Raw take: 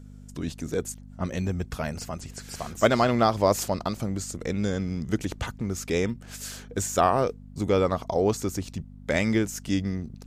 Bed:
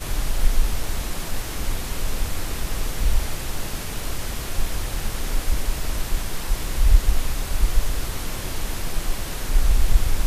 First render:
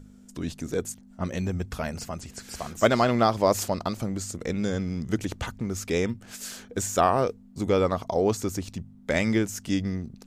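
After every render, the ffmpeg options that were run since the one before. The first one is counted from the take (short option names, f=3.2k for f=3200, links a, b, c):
-af "bandreject=f=50:t=h:w=4,bandreject=f=100:t=h:w=4,bandreject=f=150:t=h:w=4"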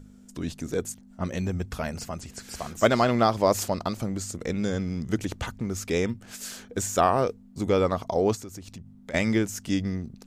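-filter_complex "[0:a]asettb=1/sr,asplit=3[a][b][c];[a]atrim=end=8.354[d];[b]atrim=start=8.35:end=9.14,asetpts=PTS-STARTPTS,afade=t=in:d=0.004:c=qsin,afade=t=out:st=0.786:d=0.004:c=qsin,acompressor=threshold=-40dB:ratio=3:attack=3.2:release=140:knee=1:detection=peak[e];[c]atrim=start=9.136[f];[d][e]acrossfade=d=0.004:c1=hsin:c2=qsin[g];[g][f]acrossfade=d=0.004:c1=qsin:c2=hsin"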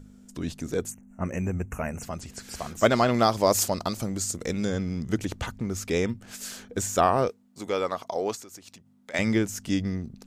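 -filter_complex "[0:a]asplit=3[a][b][c];[a]afade=t=out:st=0.9:d=0.02[d];[b]asuperstop=centerf=4100:order=12:qfactor=1.3,afade=t=in:st=0.9:d=0.02,afade=t=out:st=2.02:d=0.02[e];[c]afade=t=in:st=2.02:d=0.02[f];[d][e][f]amix=inputs=3:normalize=0,asettb=1/sr,asplit=3[g][h][i];[g]atrim=end=3.144[j];[h]atrim=start=3.14:end=4.65,asetpts=PTS-STARTPTS,afade=t=in:d=0.004:c=qsin,afade=t=out:st=1.506:d=0.004:c=qsin,bass=f=250:g=-1,treble=f=4k:g=7[k];[i]atrim=start=4.646[l];[j][k]acrossfade=d=0.004:c1=hsin:c2=qsin[m];[m][l]acrossfade=d=0.004:c1=qsin:c2=hsin,asettb=1/sr,asplit=3[n][o][p];[n]atrim=end=7.294[q];[o]atrim=start=7.29:end=9.19,asetpts=PTS-STARTPTS,afade=t=in:d=0.004:c=qsin,afade=t=out:st=1.896:d=0.004:c=qsin,highpass=f=680:p=1[r];[p]atrim=start=9.186[s];[q][r]acrossfade=d=0.004:c1=hsin:c2=qsin[t];[t][s]acrossfade=d=0.004:c1=qsin:c2=hsin"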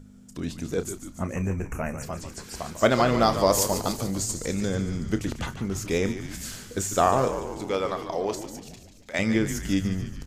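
-filter_complex "[0:a]asplit=2[a][b];[b]adelay=31,volume=-12dB[c];[a][c]amix=inputs=2:normalize=0,asplit=8[d][e][f][g][h][i][j][k];[e]adelay=145,afreqshift=-82,volume=-10dB[l];[f]adelay=290,afreqshift=-164,volume=-14.3dB[m];[g]adelay=435,afreqshift=-246,volume=-18.6dB[n];[h]adelay=580,afreqshift=-328,volume=-22.9dB[o];[i]adelay=725,afreqshift=-410,volume=-27.2dB[p];[j]adelay=870,afreqshift=-492,volume=-31.5dB[q];[k]adelay=1015,afreqshift=-574,volume=-35.8dB[r];[d][l][m][n][o][p][q][r]amix=inputs=8:normalize=0"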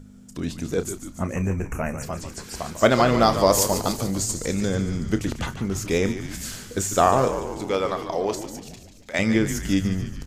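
-af "volume=3dB"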